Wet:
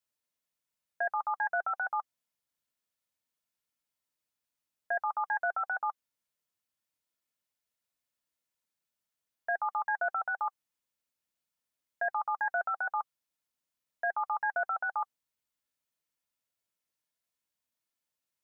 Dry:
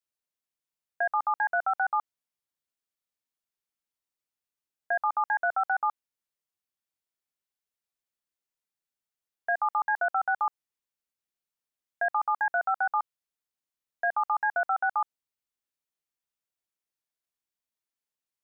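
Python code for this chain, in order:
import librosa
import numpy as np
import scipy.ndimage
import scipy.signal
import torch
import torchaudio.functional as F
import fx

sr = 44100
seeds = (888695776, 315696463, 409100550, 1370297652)

p1 = fx.over_compress(x, sr, threshold_db=-33.0, ratio=-1.0)
p2 = x + (p1 * librosa.db_to_amplitude(-2.0))
p3 = fx.notch_comb(p2, sr, f0_hz=390.0)
y = p3 * librosa.db_to_amplitude(-5.5)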